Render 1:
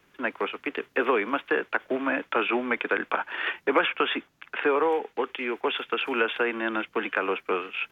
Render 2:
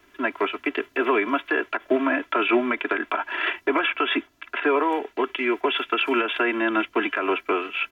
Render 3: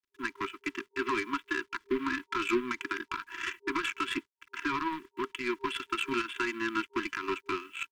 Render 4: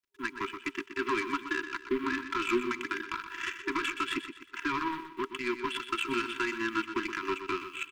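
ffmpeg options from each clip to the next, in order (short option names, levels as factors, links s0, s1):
-af "alimiter=limit=0.15:level=0:latency=1:release=132,aecho=1:1:3:0.89,volume=1.41"
-af "aeval=exprs='0.376*(cos(1*acos(clip(val(0)/0.376,-1,1)))-cos(1*PI/2))+0.0188*(cos(5*acos(clip(val(0)/0.376,-1,1)))-cos(5*PI/2))+0.0473*(cos(7*acos(clip(val(0)/0.376,-1,1)))-cos(7*PI/2))':c=same,acrusher=bits=8:mix=0:aa=0.5,afftfilt=real='re*(1-between(b*sr/4096,400,930))':imag='im*(1-between(b*sr/4096,400,930))':win_size=4096:overlap=0.75,volume=0.398"
-af "aecho=1:1:123|246|369|492:0.316|0.12|0.0457|0.0174"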